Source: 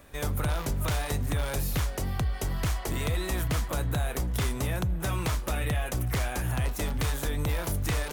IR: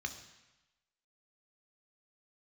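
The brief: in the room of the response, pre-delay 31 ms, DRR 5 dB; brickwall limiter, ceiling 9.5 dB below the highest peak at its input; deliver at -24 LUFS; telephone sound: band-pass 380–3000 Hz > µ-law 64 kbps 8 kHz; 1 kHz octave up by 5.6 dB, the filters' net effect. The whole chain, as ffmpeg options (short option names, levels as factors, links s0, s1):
-filter_complex "[0:a]equalizer=f=1000:t=o:g=7.5,alimiter=level_in=1.06:limit=0.0631:level=0:latency=1,volume=0.944,asplit=2[s0][s1];[1:a]atrim=start_sample=2205,adelay=31[s2];[s1][s2]afir=irnorm=-1:irlink=0,volume=0.531[s3];[s0][s3]amix=inputs=2:normalize=0,highpass=380,lowpass=3000,volume=5.01" -ar 8000 -c:a pcm_mulaw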